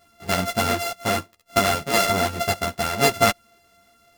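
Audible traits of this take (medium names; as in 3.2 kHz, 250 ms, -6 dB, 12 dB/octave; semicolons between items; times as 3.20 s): a buzz of ramps at a fixed pitch in blocks of 64 samples; a shimmering, thickened sound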